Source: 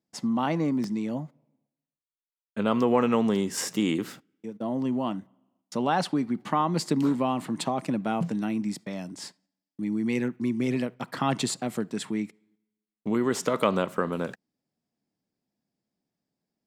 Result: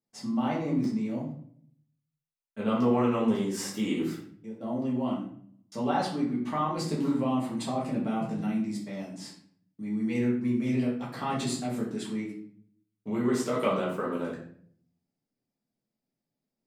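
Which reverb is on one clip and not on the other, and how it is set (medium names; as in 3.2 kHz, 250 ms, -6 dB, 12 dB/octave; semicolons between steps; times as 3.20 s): simulated room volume 77 m³, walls mixed, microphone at 1.6 m; trim -11 dB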